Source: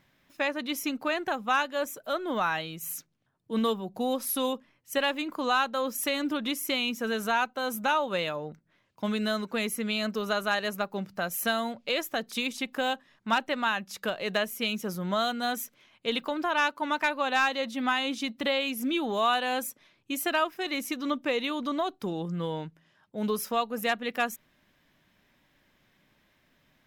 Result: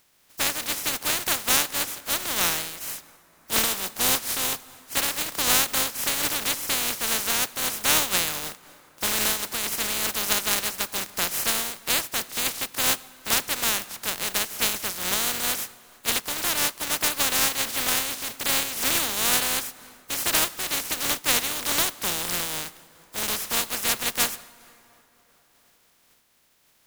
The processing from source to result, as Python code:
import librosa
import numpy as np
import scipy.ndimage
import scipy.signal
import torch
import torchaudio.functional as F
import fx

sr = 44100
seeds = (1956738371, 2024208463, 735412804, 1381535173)

y = fx.spec_flatten(x, sr, power=0.14)
y = fx.rev_plate(y, sr, seeds[0], rt60_s=3.9, hf_ratio=0.55, predelay_ms=0, drr_db=17.5)
y = fx.am_noise(y, sr, seeds[1], hz=5.7, depth_pct=65)
y = F.gain(torch.from_numpy(y), 7.5).numpy()